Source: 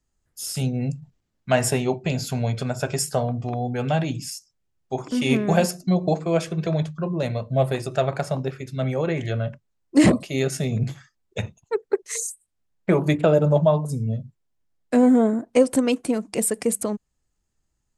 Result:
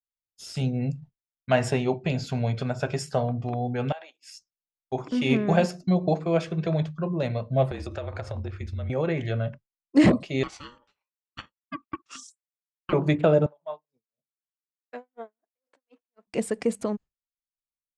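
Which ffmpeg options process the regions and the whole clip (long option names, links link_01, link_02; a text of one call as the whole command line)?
ffmpeg -i in.wav -filter_complex "[0:a]asettb=1/sr,asplit=3[link_01][link_02][link_03];[link_01]atrim=end=3.924[link_04];[link_02]atrim=start=3.92:end=4.34,asetpts=PTS-STARTPTS,afade=type=in:duration=0.004:curve=qsin,afade=type=out:start_time=0.416:duration=0.004:curve=qsin,equalizer=frequency=5500:width_type=o:width=0.96:gain=-4,acompressor=threshold=-28dB:ratio=10:attack=3.2:release=140:knee=1:detection=peak,highpass=frequency=590:width=0.5412,highpass=frequency=590:width=1.3066[link_05];[link_03]atrim=start=4.336[link_06];[link_04][link_05]acrossfade=duration=0.004:curve1=hsin:curve2=qsin[link_07];[link_07][link_06]acrossfade=duration=0.004:curve1=qsin:curve2=hsin,asettb=1/sr,asplit=3[link_08][link_09][link_10];[link_08]atrim=end=7.714[link_11];[link_09]atrim=start=7.71:end=8.9,asetpts=PTS-STARTPTS,afade=type=in:duration=0.004:curve=qsin,afade=type=out:start_time=1.186:duration=0.004:curve=qsin,asubboost=boost=9.5:cutoff=170,afreqshift=-40,acompressor=threshold=-26dB:ratio=12:attack=3.2:release=140:knee=1:detection=peak[link_12];[link_10]atrim=start=8.896[link_13];[link_11][link_12]acrossfade=duration=0.004:curve1=hsin:curve2=qsin[link_14];[link_14][link_13]acrossfade=duration=0.004:curve1=qsin:curve2=hsin,asettb=1/sr,asplit=3[link_15][link_16][link_17];[link_15]atrim=end=10.434[link_18];[link_16]atrim=start=10.43:end=12.93,asetpts=PTS-STARTPTS,afade=type=in:duration=0.004:curve=qsin,afade=type=out:start_time=2.496:duration=0.004:curve=qsin,highpass=640,lowpass=7400,aeval=exprs='val(0)*sin(2*PI*720*n/s)':channel_layout=same[link_19];[link_17]atrim=start=12.926[link_20];[link_18][link_19]acrossfade=duration=0.004:curve1=hsin:curve2=qsin[link_21];[link_21][link_20]acrossfade=duration=0.004:curve1=qsin:curve2=hsin,asettb=1/sr,asplit=3[link_22][link_23][link_24];[link_22]atrim=end=13.464[link_25];[link_23]atrim=start=13.46:end=16.27,asetpts=PTS-STARTPTS,afade=type=in:duration=0.004:curve=qsin,afade=type=out:start_time=2.806:duration=0.004:curve=qsin,acompressor=threshold=-27dB:ratio=2:attack=3.2:release=140:knee=1:detection=peak,highpass=650,lowpass=4100,aeval=exprs='val(0)*pow(10,-33*(0.5-0.5*cos(2*PI*4*n/s))/20)':channel_layout=same[link_26];[link_24]atrim=start=16.266[link_27];[link_25][link_26]acrossfade=duration=0.004:curve1=hsin:curve2=qsin[link_28];[link_28][link_27]acrossfade=duration=0.004:curve1=qsin:curve2=hsin,agate=range=-33dB:threshold=-35dB:ratio=3:detection=peak,lowpass=4400,volume=-2dB" out.wav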